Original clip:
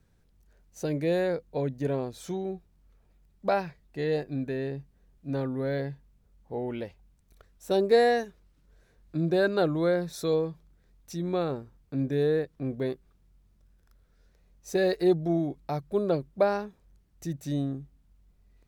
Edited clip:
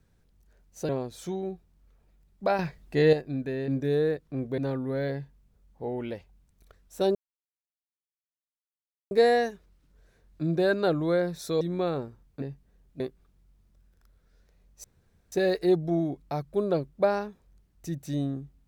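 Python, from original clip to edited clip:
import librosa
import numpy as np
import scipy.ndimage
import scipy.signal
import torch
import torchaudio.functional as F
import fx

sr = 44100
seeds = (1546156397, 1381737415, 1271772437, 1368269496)

y = fx.edit(x, sr, fx.cut(start_s=0.89, length_s=1.02),
    fx.clip_gain(start_s=3.61, length_s=0.54, db=8.0),
    fx.swap(start_s=4.7, length_s=0.58, other_s=11.96, other_length_s=0.9),
    fx.insert_silence(at_s=7.85, length_s=1.96),
    fx.cut(start_s=10.35, length_s=0.8),
    fx.insert_room_tone(at_s=14.7, length_s=0.48), tone=tone)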